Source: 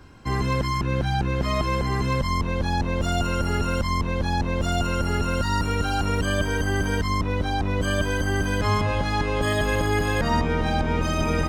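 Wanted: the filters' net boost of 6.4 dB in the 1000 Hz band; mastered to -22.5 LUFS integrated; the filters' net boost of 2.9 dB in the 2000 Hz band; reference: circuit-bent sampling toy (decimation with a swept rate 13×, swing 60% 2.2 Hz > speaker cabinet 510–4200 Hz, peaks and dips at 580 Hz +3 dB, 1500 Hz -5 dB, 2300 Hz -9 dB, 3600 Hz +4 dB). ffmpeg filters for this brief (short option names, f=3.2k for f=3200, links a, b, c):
-af "equalizer=f=1k:t=o:g=7,equalizer=f=2k:t=o:g=7.5,acrusher=samples=13:mix=1:aa=0.000001:lfo=1:lforange=7.8:lforate=2.2,highpass=510,equalizer=f=580:t=q:w=4:g=3,equalizer=f=1.5k:t=q:w=4:g=-5,equalizer=f=2.3k:t=q:w=4:g=-9,equalizer=f=3.6k:t=q:w=4:g=4,lowpass=f=4.2k:w=0.5412,lowpass=f=4.2k:w=1.3066,volume=1dB"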